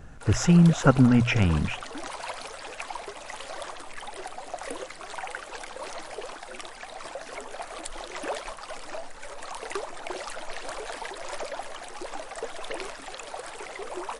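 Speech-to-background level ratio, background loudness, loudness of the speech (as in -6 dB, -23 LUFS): 16.5 dB, -37.5 LUFS, -21.0 LUFS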